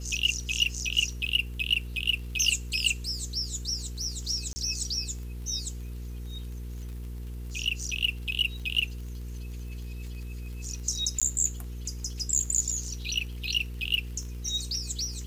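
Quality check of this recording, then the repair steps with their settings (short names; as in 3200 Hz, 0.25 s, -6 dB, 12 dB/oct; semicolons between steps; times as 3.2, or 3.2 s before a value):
crackle 30/s -38 dBFS
hum 60 Hz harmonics 8 -37 dBFS
4.53–4.56 gap 30 ms
11.2–11.22 gap 16 ms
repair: de-click; de-hum 60 Hz, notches 8; interpolate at 4.53, 30 ms; interpolate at 11.2, 16 ms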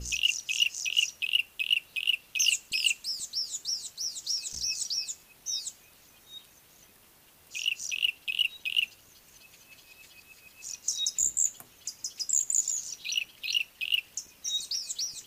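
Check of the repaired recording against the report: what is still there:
none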